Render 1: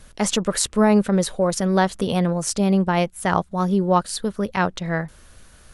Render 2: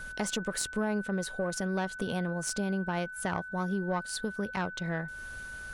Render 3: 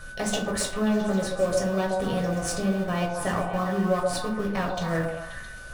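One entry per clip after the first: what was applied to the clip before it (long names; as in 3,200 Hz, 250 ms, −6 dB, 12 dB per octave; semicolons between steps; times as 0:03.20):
one-sided soft clipper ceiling −11 dBFS; downward compressor 2.5 to 1, threshold −35 dBFS, peak gain reduction 15 dB; steady tone 1,500 Hz −40 dBFS
in parallel at −8 dB: comparator with hysteresis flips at −31 dBFS; on the sum: echo through a band-pass that steps 133 ms, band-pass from 610 Hz, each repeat 0.7 octaves, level −1 dB; convolution reverb RT60 0.40 s, pre-delay 7 ms, DRR −0.5 dB; level −1 dB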